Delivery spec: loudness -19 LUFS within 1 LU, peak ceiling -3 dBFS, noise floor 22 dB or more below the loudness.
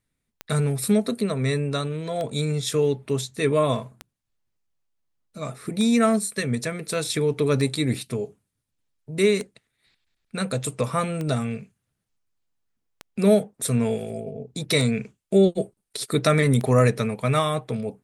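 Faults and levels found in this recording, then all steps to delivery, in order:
clicks found 10; loudness -24.0 LUFS; peak level -6.0 dBFS; loudness target -19.0 LUFS
-> de-click; trim +5 dB; peak limiter -3 dBFS

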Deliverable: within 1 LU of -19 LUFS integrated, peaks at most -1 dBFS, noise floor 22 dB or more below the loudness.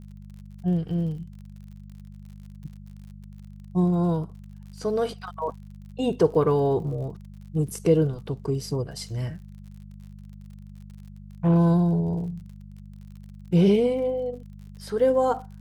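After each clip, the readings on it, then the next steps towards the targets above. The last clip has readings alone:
tick rate 49 per s; hum 50 Hz; highest harmonic 200 Hz; hum level -41 dBFS; loudness -25.0 LUFS; peak level -8.5 dBFS; loudness target -19.0 LUFS
-> de-click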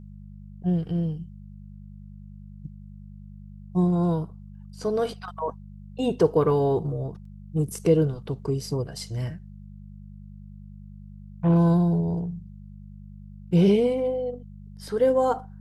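tick rate 0.13 per s; hum 50 Hz; highest harmonic 200 Hz; hum level -41 dBFS
-> de-hum 50 Hz, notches 4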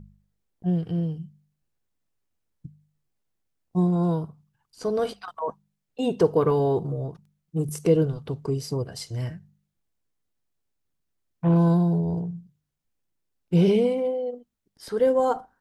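hum not found; loudness -25.0 LUFS; peak level -9.0 dBFS; loudness target -19.0 LUFS
-> trim +6 dB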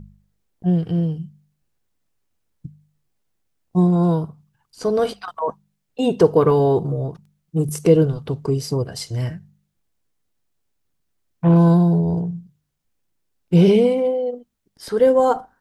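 loudness -19.0 LUFS; peak level -3.0 dBFS; noise floor -73 dBFS

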